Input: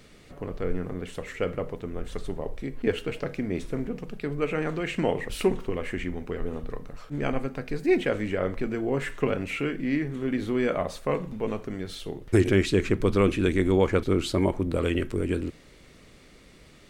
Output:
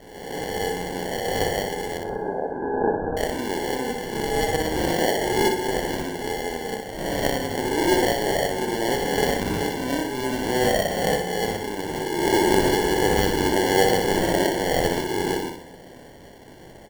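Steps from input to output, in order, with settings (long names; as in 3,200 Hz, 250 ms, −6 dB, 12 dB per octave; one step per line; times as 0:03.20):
peak hold with a rise ahead of every peak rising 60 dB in 1.12 s
high-pass filter 390 Hz 12 dB per octave
in parallel at +2 dB: downward compressor, threshold −34 dBFS, peak gain reduction 15.5 dB
on the sum: decimation without filtering 35×
0:01.97–0:03.17: linear-phase brick-wall low-pass 1,700 Hz
repeating echo 61 ms, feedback 42%, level −5.5 dB
on a send at −16.5 dB: convolution reverb RT60 2.3 s, pre-delay 3 ms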